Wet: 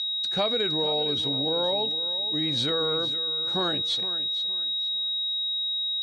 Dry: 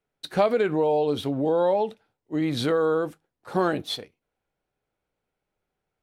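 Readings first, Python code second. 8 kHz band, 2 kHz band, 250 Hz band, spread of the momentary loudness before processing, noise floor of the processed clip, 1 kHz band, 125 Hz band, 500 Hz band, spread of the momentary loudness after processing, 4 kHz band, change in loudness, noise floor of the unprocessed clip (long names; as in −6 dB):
−1.0 dB, −3.5 dB, −6.0 dB, 10 LU, −29 dBFS, −6.0 dB, −4.0 dB, −6.5 dB, 2 LU, +16.5 dB, +0.5 dB, −84 dBFS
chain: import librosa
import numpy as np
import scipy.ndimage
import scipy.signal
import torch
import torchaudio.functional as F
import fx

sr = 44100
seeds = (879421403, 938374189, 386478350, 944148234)

y = fx.low_shelf(x, sr, hz=130.0, db=8.5)
y = y + 10.0 ** (-26.0 / 20.0) * np.sin(2.0 * np.pi * 3800.0 * np.arange(len(y)) / sr)
y = scipy.signal.sosfilt(scipy.signal.butter(4, 7900.0, 'lowpass', fs=sr, output='sos'), y)
y = fx.high_shelf(y, sr, hz=2000.0, db=10.0)
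y = fx.echo_feedback(y, sr, ms=464, feedback_pct=30, wet_db=-13.5)
y = y * librosa.db_to_amplitude(-8.0)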